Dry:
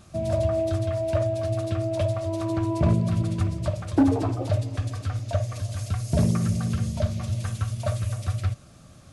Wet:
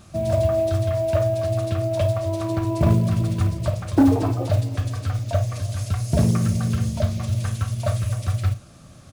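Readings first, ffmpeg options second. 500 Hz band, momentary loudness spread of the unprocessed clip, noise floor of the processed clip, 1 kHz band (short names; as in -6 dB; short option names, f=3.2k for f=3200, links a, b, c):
+4.0 dB, 7 LU, -46 dBFS, +3.5 dB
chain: -af "aecho=1:1:32|51:0.224|0.178,acrusher=bits=8:mode=log:mix=0:aa=0.000001,volume=3dB"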